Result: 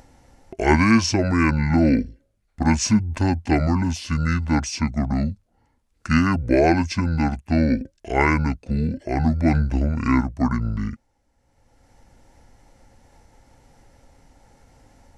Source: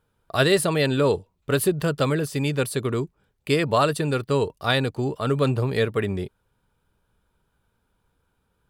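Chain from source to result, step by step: upward compressor, threshold -40 dBFS; wide varispeed 0.573×; trim +2.5 dB

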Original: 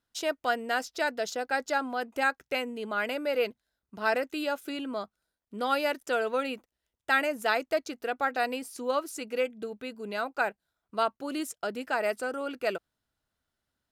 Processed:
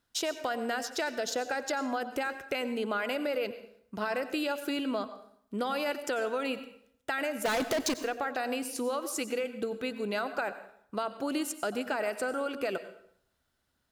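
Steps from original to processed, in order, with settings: peak limiter -23.5 dBFS, peak gain reduction 10.5 dB; 7.45–7.94 s: waveshaping leveller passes 5; compression, threshold -34 dBFS, peak gain reduction 8.5 dB; plate-style reverb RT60 0.66 s, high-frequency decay 0.8×, pre-delay 80 ms, DRR 11.5 dB; trim +5.5 dB

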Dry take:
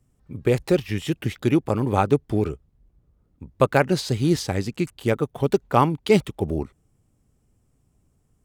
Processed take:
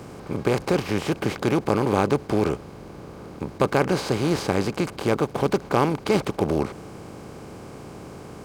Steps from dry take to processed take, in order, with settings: spectral levelling over time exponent 0.4; trim -7 dB

